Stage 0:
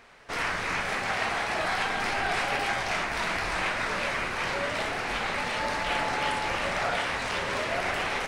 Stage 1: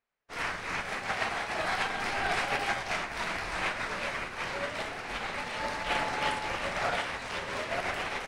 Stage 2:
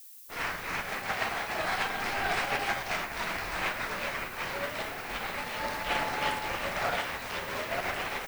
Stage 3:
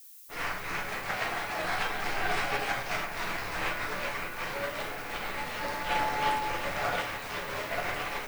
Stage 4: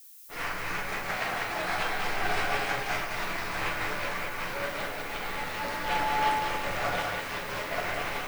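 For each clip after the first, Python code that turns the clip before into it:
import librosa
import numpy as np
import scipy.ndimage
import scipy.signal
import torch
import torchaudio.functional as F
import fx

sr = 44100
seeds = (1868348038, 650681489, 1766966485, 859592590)

y1 = fx.upward_expand(x, sr, threshold_db=-49.0, expansion=2.5)
y2 = fx.dmg_noise_colour(y1, sr, seeds[0], colour='violet', level_db=-50.0)
y3 = fx.room_shoebox(y2, sr, seeds[1], volume_m3=33.0, walls='mixed', distance_m=0.37)
y3 = y3 * 10.0 ** (-2.0 / 20.0)
y4 = y3 + 10.0 ** (-4.5 / 20.0) * np.pad(y3, (int(195 * sr / 1000.0), 0))[:len(y3)]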